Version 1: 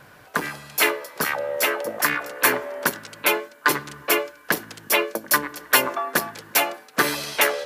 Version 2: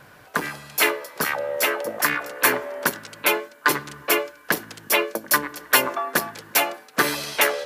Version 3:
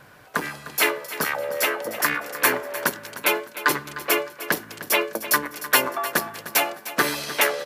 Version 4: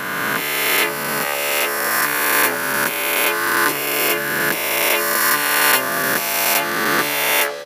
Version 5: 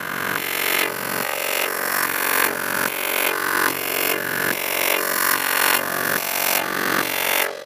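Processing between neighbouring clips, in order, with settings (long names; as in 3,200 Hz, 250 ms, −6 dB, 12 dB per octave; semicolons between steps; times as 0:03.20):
no processing that can be heard
repeating echo 304 ms, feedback 30%, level −14 dB; level −1 dB
peak hold with a rise ahead of every peak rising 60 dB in 2.76 s; level −1.5 dB
ring modulation 23 Hz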